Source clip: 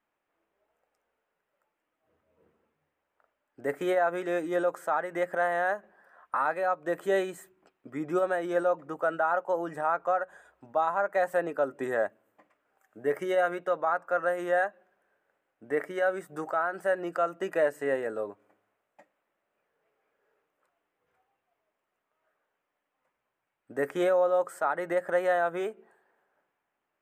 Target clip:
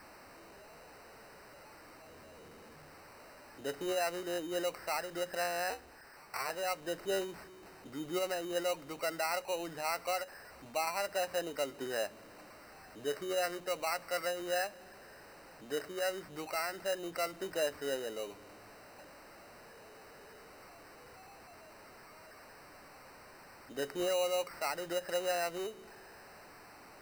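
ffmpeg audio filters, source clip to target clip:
ffmpeg -i in.wav -filter_complex "[0:a]aeval=exprs='val(0)+0.5*0.01*sgn(val(0))':channel_layout=same,asettb=1/sr,asplit=3[link_01][link_02][link_03];[link_01]atrim=end=5.704[link_04];[link_02]atrim=start=5.7:end=6.5,asetpts=PTS-STARTPTS,afade=type=in:duration=0.004:curve=qsin,afade=type=out:start_time=0.796:duration=0.004:curve=qsin,aeval=exprs='val(0)*sin(2*PI*140*n/s)':channel_layout=same[link_05];[link_03]atrim=start=6.496[link_06];[link_04][link_05]acrossfade=duration=0.004:curve1=hsin:curve2=qsin[link_07];[link_07][link_06]acrossfade=duration=0.004:curve1=qsin:curve2=hsin,acrusher=samples=13:mix=1:aa=0.000001,volume=-8.5dB" out.wav

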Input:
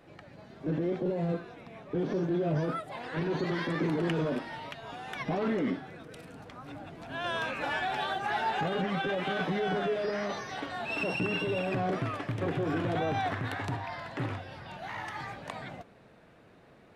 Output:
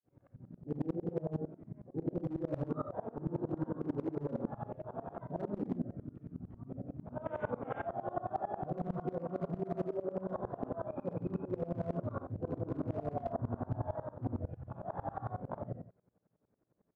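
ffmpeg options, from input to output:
ffmpeg -i in.wav -filter_complex "[0:a]lowpass=1200,agate=range=-33dB:threshold=-52dB:ratio=3:detection=peak,highpass=68,afwtdn=0.0141,lowshelf=frequency=350:gain=7.5,aecho=1:1:15|69:0.562|0.668,adynamicequalizer=threshold=0.00631:dfrequency=650:dqfactor=2.2:tfrequency=650:tqfactor=2.2:attack=5:release=100:ratio=0.375:range=2:mode=boostabove:tftype=bell,asoftclip=type=hard:threshold=-18dB,asetrate=40440,aresample=44100,atempo=1.09051,asplit=2[link_01][link_02];[link_02]adelay=34,volume=-12dB[link_03];[link_01][link_03]amix=inputs=2:normalize=0,areverse,acompressor=threshold=-32dB:ratio=6,areverse,aeval=exprs='val(0)*pow(10,-24*if(lt(mod(-11*n/s,1),2*abs(-11)/1000),1-mod(-11*n/s,1)/(2*abs(-11)/1000),(mod(-11*n/s,1)-2*abs(-11)/1000)/(1-2*abs(-11)/1000))/20)':channel_layout=same,volume=4dB" out.wav

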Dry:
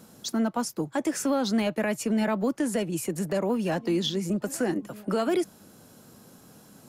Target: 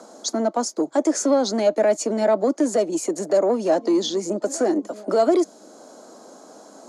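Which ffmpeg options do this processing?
ffmpeg -i in.wav -filter_complex "[0:a]equalizer=frequency=440:width=0.6:gain=6.5,acrossover=split=800|1300[link_01][link_02][link_03];[link_02]acompressor=mode=upward:threshold=-46dB:ratio=2.5[link_04];[link_01][link_04][link_03]amix=inputs=3:normalize=0,asoftclip=type=tanh:threshold=-14dB,highpass=frequency=250:width=0.5412,highpass=frequency=250:width=1.3066,equalizer=frequency=300:width_type=q:width=4:gain=3,equalizer=frequency=640:width_type=q:width=4:gain=8,equalizer=frequency=1700:width_type=q:width=4:gain=-3,equalizer=frequency=2700:width_type=q:width=4:gain=-8,equalizer=frequency=4500:width_type=q:width=4:gain=6,equalizer=frequency=6600:width_type=q:width=4:gain=10,lowpass=frequency=9300:width=0.5412,lowpass=frequency=9300:width=1.3066,volume=1.5dB" out.wav

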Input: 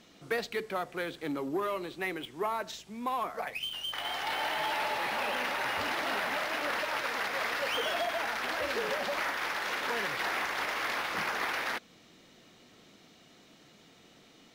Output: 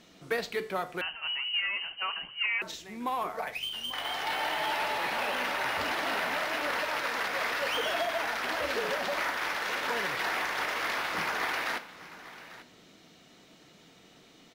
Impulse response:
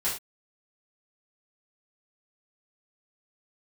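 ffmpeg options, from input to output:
-filter_complex "[0:a]aecho=1:1:842:0.15,asplit=2[link_01][link_02];[1:a]atrim=start_sample=2205[link_03];[link_02][link_03]afir=irnorm=-1:irlink=0,volume=-16.5dB[link_04];[link_01][link_04]amix=inputs=2:normalize=0,asettb=1/sr,asplit=3[link_05][link_06][link_07];[link_05]atrim=end=1.014[link_08];[link_06]atrim=start=1.01:end=2.62,asetpts=PTS-STARTPTS,afade=type=in:duration=0.004:curve=qsin,afade=type=out:start_time=1.606:duration=0.004:curve=qsin,lowpass=frequency=2700:width_type=q:width=0.5098,lowpass=frequency=2700:width_type=q:width=0.6013,lowpass=frequency=2700:width_type=q:width=0.9,lowpass=frequency=2700:width_type=q:width=2.563,afreqshift=-3200[link_09];[link_07]atrim=start=2.616[link_10];[link_08][link_09]acrossfade=duration=0.004:curve1=hsin:curve2=qsin[link_11];[link_11][link_10]acrossfade=duration=0.004:curve1=qsin:curve2=hsin"

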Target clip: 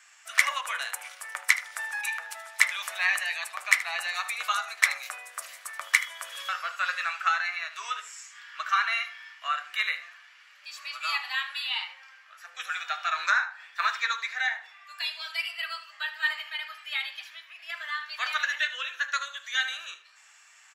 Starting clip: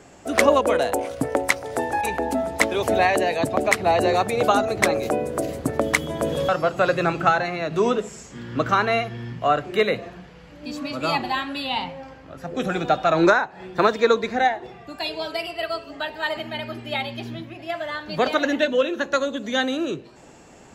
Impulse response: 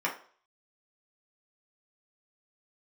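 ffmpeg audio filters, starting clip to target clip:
-filter_complex "[0:a]highpass=frequency=1400:width=0.5412,highpass=frequency=1400:width=1.3066,aecho=1:1:77:0.168,asplit=2[link_01][link_02];[1:a]atrim=start_sample=2205[link_03];[link_02][link_03]afir=irnorm=-1:irlink=0,volume=-11dB[link_04];[link_01][link_04]amix=inputs=2:normalize=0,volume=-3.5dB"

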